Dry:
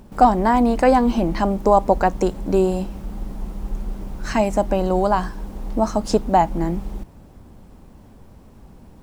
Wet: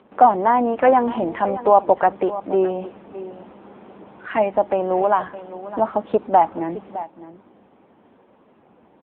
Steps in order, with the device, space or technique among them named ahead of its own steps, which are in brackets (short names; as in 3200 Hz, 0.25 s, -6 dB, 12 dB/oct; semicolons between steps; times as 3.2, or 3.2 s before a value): 5.05–5.69 dynamic EQ 2000 Hz, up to +3 dB, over -44 dBFS, Q 5.9; satellite phone (BPF 360–3100 Hz; echo 0.612 s -15 dB; gain +2.5 dB; AMR-NB 6.7 kbps 8000 Hz)